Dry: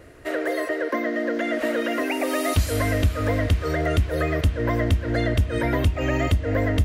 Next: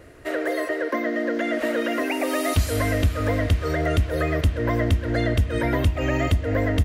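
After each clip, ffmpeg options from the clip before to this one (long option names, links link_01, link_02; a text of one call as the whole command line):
ffmpeg -i in.wav -af "aecho=1:1:129:0.0944" out.wav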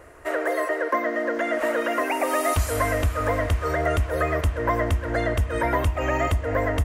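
ffmpeg -i in.wav -af "equalizer=frequency=125:width_type=o:width=1:gain=-6,equalizer=frequency=250:width_type=o:width=1:gain=-6,equalizer=frequency=1000:width_type=o:width=1:gain=8,equalizer=frequency=4000:width_type=o:width=1:gain=-7,equalizer=frequency=8000:width_type=o:width=1:gain=3" out.wav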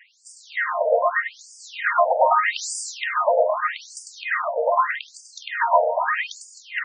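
ffmpeg -i in.wav -filter_complex "[0:a]asplit=2[link_01][link_02];[link_02]aecho=0:1:100|260|516|925.6|1581:0.631|0.398|0.251|0.158|0.1[link_03];[link_01][link_03]amix=inputs=2:normalize=0,afftfilt=real='re*between(b*sr/1024,630*pow(6700/630,0.5+0.5*sin(2*PI*0.81*pts/sr))/1.41,630*pow(6700/630,0.5+0.5*sin(2*PI*0.81*pts/sr))*1.41)':imag='im*between(b*sr/1024,630*pow(6700/630,0.5+0.5*sin(2*PI*0.81*pts/sr))/1.41,630*pow(6700/630,0.5+0.5*sin(2*PI*0.81*pts/sr))*1.41)':win_size=1024:overlap=0.75,volume=8dB" out.wav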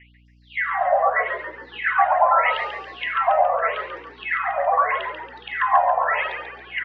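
ffmpeg -i in.wav -filter_complex "[0:a]highpass=frequency=380:width_type=q:width=0.5412,highpass=frequency=380:width_type=q:width=1.307,lowpass=frequency=3100:width_type=q:width=0.5176,lowpass=frequency=3100:width_type=q:width=0.7071,lowpass=frequency=3100:width_type=q:width=1.932,afreqshift=98,asplit=7[link_01][link_02][link_03][link_04][link_05][link_06][link_07];[link_02]adelay=139,afreqshift=-62,volume=-7dB[link_08];[link_03]adelay=278,afreqshift=-124,volume=-13dB[link_09];[link_04]adelay=417,afreqshift=-186,volume=-19dB[link_10];[link_05]adelay=556,afreqshift=-248,volume=-25.1dB[link_11];[link_06]adelay=695,afreqshift=-310,volume=-31.1dB[link_12];[link_07]adelay=834,afreqshift=-372,volume=-37.1dB[link_13];[link_01][link_08][link_09][link_10][link_11][link_12][link_13]amix=inputs=7:normalize=0,aeval=exprs='val(0)+0.00224*(sin(2*PI*60*n/s)+sin(2*PI*2*60*n/s)/2+sin(2*PI*3*60*n/s)/3+sin(2*PI*4*60*n/s)/4+sin(2*PI*5*60*n/s)/5)':channel_layout=same" out.wav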